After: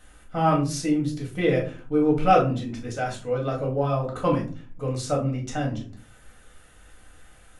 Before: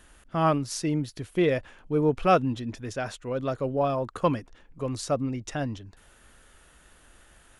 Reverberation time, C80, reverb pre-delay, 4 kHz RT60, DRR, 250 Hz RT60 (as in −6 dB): 0.40 s, 15.0 dB, 4 ms, 0.25 s, −2.5 dB, 0.60 s